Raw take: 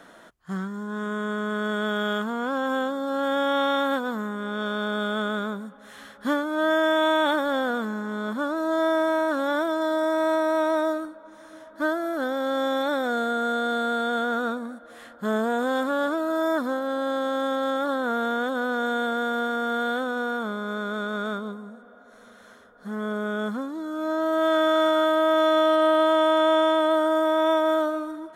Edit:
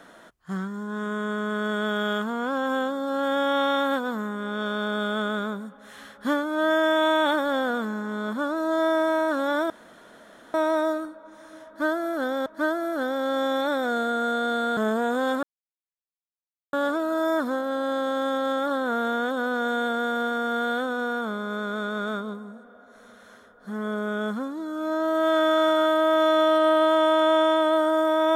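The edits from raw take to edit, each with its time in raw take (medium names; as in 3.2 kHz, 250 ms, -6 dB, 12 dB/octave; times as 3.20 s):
9.70–10.54 s: room tone
11.67–12.46 s: loop, 2 plays
13.98–15.25 s: delete
15.91 s: insert silence 1.30 s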